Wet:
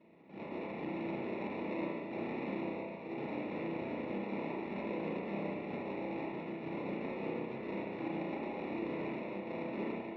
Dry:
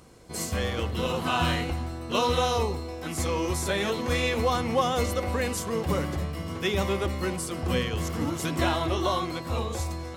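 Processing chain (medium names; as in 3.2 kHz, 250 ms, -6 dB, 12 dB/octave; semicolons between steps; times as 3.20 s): spectral gate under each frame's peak -25 dB weak; 1.54–2.14 s: comb 7.1 ms, depth 95%; peak limiter -36 dBFS, peak gain reduction 11 dB; sample-and-hold 28×; cabinet simulation 200–2900 Hz, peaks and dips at 210 Hz +7 dB, 320 Hz +5 dB, 730 Hz -6 dB, 1.2 kHz -10 dB; spring tank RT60 1.1 s, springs 30/36 ms, chirp 75 ms, DRR -2.5 dB; trim +4.5 dB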